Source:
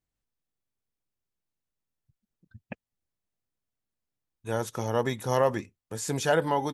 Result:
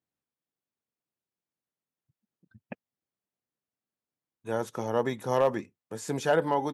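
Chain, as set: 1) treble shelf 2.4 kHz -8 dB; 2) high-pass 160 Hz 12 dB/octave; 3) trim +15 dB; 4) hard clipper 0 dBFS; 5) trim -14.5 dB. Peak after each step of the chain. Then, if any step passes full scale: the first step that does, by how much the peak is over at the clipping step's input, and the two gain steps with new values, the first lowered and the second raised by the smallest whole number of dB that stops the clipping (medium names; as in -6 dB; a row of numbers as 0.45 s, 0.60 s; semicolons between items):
-11.0 dBFS, -11.5 dBFS, +3.5 dBFS, 0.0 dBFS, -14.5 dBFS; step 3, 3.5 dB; step 3 +11 dB, step 5 -10.5 dB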